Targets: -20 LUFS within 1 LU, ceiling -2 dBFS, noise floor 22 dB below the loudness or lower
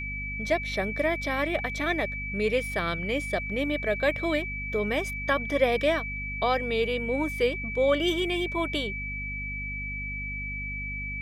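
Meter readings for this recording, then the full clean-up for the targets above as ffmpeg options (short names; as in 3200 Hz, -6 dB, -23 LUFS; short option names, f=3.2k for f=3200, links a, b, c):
hum 50 Hz; harmonics up to 250 Hz; hum level -35 dBFS; steady tone 2300 Hz; tone level -33 dBFS; loudness -28.0 LUFS; peak -10.5 dBFS; loudness target -20.0 LUFS
-> -af "bandreject=f=50:t=h:w=6,bandreject=f=100:t=h:w=6,bandreject=f=150:t=h:w=6,bandreject=f=200:t=h:w=6,bandreject=f=250:t=h:w=6"
-af "bandreject=f=2.3k:w=30"
-af "volume=8dB"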